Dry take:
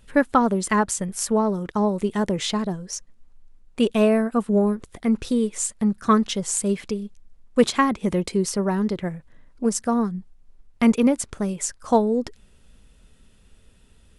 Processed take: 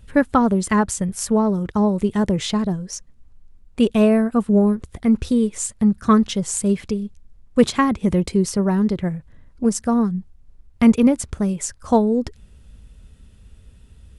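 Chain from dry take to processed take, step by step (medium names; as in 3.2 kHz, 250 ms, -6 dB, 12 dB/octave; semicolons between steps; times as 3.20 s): peaking EQ 70 Hz +13 dB 2.5 oct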